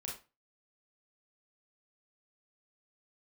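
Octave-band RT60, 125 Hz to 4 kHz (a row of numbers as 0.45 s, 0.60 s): 0.35 s, 0.30 s, 0.30 s, 0.30 s, 0.25 s, 0.25 s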